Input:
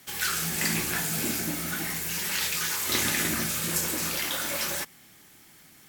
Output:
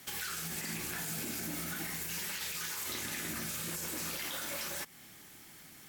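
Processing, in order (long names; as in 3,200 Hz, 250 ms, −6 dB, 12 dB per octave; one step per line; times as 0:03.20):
downward compressor 2.5 to 1, threshold −37 dBFS, peak gain reduction 10 dB
brickwall limiter −28.5 dBFS, peak gain reduction 9 dB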